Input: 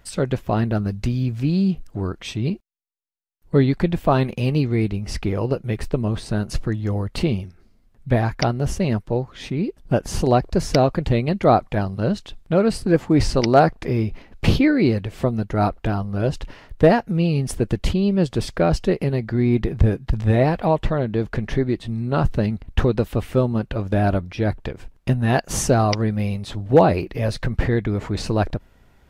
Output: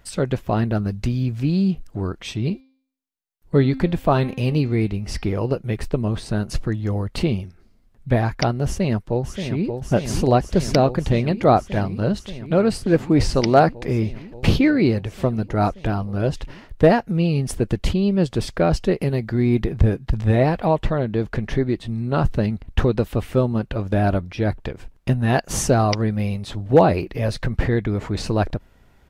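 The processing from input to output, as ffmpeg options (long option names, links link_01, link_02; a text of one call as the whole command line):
ffmpeg -i in.wav -filter_complex "[0:a]asettb=1/sr,asplit=3[link_01][link_02][link_03];[link_01]atrim=end=2.204[link_04];[link_02]atrim=start=2.2:end=5.4,asetpts=PTS-STARTPTS,afade=type=in:duration=0.004:curve=qsin,afade=type=out:start_time=3.196:duration=0.004:curve=qsin,bandreject=frequency=264.4:width_type=h:width=4,bandreject=frequency=528.8:width_type=h:width=4,bandreject=frequency=793.2:width_type=h:width=4,bandreject=frequency=1057.6:width_type=h:width=4,bandreject=frequency=1322:width_type=h:width=4,bandreject=frequency=1586.4:width_type=h:width=4,bandreject=frequency=1850.8:width_type=h:width=4,bandreject=frequency=2115.2:width_type=h:width=4,bandreject=frequency=2379.6:width_type=h:width=4,bandreject=frequency=2644:width_type=h:width=4,bandreject=frequency=2908.4:width_type=h:width=4,bandreject=frequency=3172.8:width_type=h:width=4,bandreject=frequency=3437.2:width_type=h:width=4,bandreject=frequency=3701.6:width_type=h:width=4,bandreject=frequency=3966:width_type=h:width=4,bandreject=frequency=4230.4:width_type=h:width=4,bandreject=frequency=4494.8:width_type=h:width=4,bandreject=frequency=4759.2:width_type=h:width=4,bandreject=frequency=5023.6:width_type=h:width=4,bandreject=frequency=5288:width_type=h:width=4,bandreject=frequency=5552.4:width_type=h:width=4,bandreject=frequency=5816.8:width_type=h:width=4[link_05];[link_03]atrim=start=5.396[link_06];[link_04][link_05]acrossfade=duration=0.004:curve1=hsin:curve2=qsin[link_07];[link_07][link_06]acrossfade=duration=0.004:curve1=qsin:curve2=hsin,asplit=2[link_08][link_09];[link_09]afade=type=in:start_time=8.65:duration=0.01,afade=type=out:start_time=9.68:duration=0.01,aecho=0:1:580|1160|1740|2320|2900|3480|4060|4640|5220|5800|6380|6960:0.446684|0.379681|0.322729|0.27432|0.233172|0.198196|0.168467|0.143197|0.121717|0.103459|0.0879406|0.0747495[link_10];[link_08][link_10]amix=inputs=2:normalize=0,asettb=1/sr,asplit=3[link_11][link_12][link_13];[link_11]atrim=end=19.014[link_14];[link_12]atrim=start=19.01:end=19.64,asetpts=PTS-STARTPTS,afade=type=in:duration=0.004:curve=qsin,afade=type=out:start_time=0.626:duration=0.004:curve=qsin,highshelf=frequency=7500:gain=7.5[link_15];[link_13]atrim=start=19.636[link_16];[link_14][link_15]acrossfade=duration=0.004:curve1=hsin:curve2=qsin[link_17];[link_17][link_16]acrossfade=duration=0.004:curve1=qsin:curve2=hsin" out.wav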